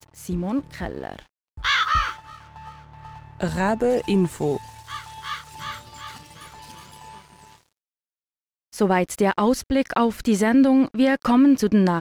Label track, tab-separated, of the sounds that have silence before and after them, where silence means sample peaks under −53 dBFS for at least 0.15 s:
1.570000	7.720000	sound